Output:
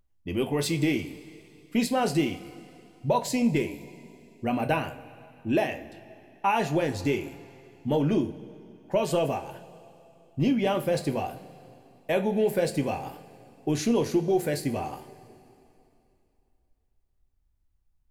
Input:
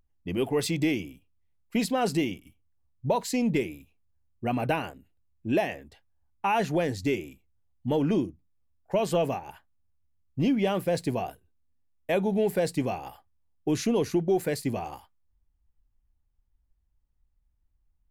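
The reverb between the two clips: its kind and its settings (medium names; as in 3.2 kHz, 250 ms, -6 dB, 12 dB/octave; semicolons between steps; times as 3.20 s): two-slope reverb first 0.27 s, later 2.8 s, from -18 dB, DRR 6 dB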